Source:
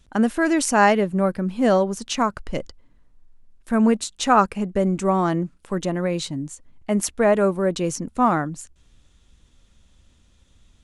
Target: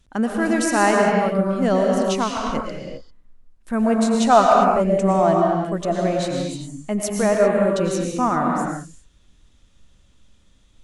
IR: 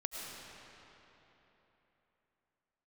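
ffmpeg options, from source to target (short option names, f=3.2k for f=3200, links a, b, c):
-filter_complex "[0:a]asettb=1/sr,asplit=3[a][b][c];[a]atrim=end=3.844[d];[b]atrim=start=3.84:end=6.15,asetpts=PTS-STARTPTS,afade=t=in:d=0.004:c=qsin,afade=t=out:st=2.306:d=0.004:c=qsin,equalizer=f=670:w=5.1:g=14[e];[c]atrim=start=6.146[f];[d][e]acrossfade=d=0.004:c1=hsin:c2=qsin[g];[g][f]acrossfade=d=0.004:c1=qsin:c2=hsin[h];[1:a]atrim=start_sample=2205,afade=t=out:st=0.43:d=0.01,atrim=end_sample=19404,asetrate=41454,aresample=44100[i];[h][i]afir=irnorm=-1:irlink=0"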